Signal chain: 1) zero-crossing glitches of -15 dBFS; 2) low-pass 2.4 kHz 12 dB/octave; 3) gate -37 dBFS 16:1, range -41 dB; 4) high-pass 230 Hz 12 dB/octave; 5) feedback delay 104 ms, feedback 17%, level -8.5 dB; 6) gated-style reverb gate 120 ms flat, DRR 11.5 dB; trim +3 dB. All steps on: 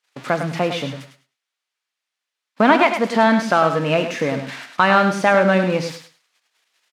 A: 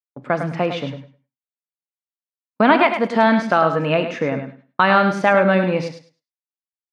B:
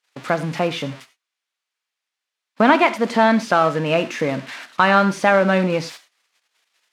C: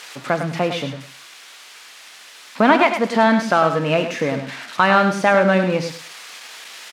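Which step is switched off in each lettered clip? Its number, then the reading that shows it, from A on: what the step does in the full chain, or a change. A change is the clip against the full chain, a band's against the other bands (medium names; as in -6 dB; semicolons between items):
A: 1, distortion -2 dB; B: 5, echo-to-direct -6.5 dB to -11.5 dB; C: 3, momentary loudness spread change +8 LU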